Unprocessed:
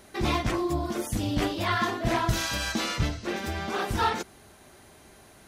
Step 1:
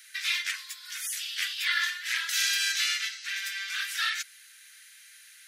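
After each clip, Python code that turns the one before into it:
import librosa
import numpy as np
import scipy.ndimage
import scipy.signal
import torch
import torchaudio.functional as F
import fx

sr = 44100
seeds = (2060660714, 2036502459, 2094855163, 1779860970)

y = scipy.signal.sosfilt(scipy.signal.butter(8, 1600.0, 'highpass', fs=sr, output='sos'), x)
y = y * 10.0 ** (5.5 / 20.0)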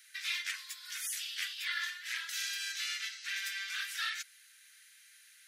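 y = fx.rider(x, sr, range_db=4, speed_s=0.5)
y = y * 10.0 ** (-7.5 / 20.0)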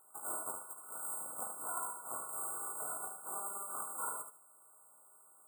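y = np.r_[np.sort(x[:len(x) // 16 * 16].reshape(-1, 16), axis=1).ravel(), x[len(x) // 16 * 16:]]
y = fx.brickwall_bandstop(y, sr, low_hz=1500.0, high_hz=7000.0)
y = fx.echo_feedback(y, sr, ms=75, feedback_pct=25, wet_db=-7.5)
y = y * 10.0 ** (1.0 / 20.0)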